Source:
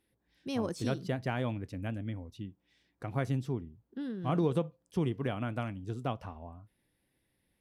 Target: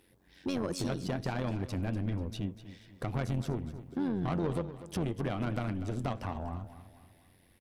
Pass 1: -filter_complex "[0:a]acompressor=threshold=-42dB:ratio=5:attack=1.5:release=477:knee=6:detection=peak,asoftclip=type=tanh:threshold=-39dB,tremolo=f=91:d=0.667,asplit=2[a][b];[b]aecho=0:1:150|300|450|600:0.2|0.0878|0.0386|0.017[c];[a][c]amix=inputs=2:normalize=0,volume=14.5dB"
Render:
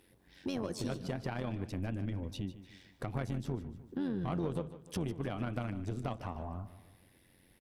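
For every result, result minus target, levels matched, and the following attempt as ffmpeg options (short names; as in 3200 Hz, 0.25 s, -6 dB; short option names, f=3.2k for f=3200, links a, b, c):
echo 94 ms early; compressor: peak gain reduction +5.5 dB
-filter_complex "[0:a]acompressor=threshold=-42dB:ratio=5:attack=1.5:release=477:knee=6:detection=peak,asoftclip=type=tanh:threshold=-39dB,tremolo=f=91:d=0.667,asplit=2[a][b];[b]aecho=0:1:244|488|732|976:0.2|0.0878|0.0386|0.017[c];[a][c]amix=inputs=2:normalize=0,volume=14.5dB"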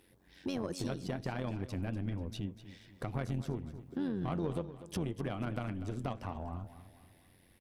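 compressor: peak gain reduction +5.5 dB
-filter_complex "[0:a]acompressor=threshold=-35dB:ratio=5:attack=1.5:release=477:knee=6:detection=peak,asoftclip=type=tanh:threshold=-39dB,tremolo=f=91:d=0.667,asplit=2[a][b];[b]aecho=0:1:244|488|732|976:0.2|0.0878|0.0386|0.017[c];[a][c]amix=inputs=2:normalize=0,volume=14.5dB"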